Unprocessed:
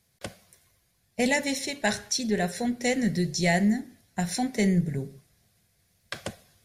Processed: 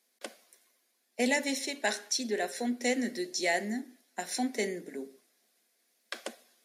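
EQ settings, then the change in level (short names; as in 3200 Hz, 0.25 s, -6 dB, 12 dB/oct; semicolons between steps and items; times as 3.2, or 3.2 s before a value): Chebyshev high-pass 240 Hz, order 5; -3.0 dB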